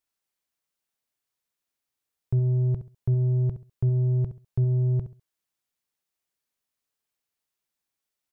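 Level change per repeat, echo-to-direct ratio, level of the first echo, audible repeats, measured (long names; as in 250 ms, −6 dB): −12.0 dB, −11.0 dB, −11.5 dB, 2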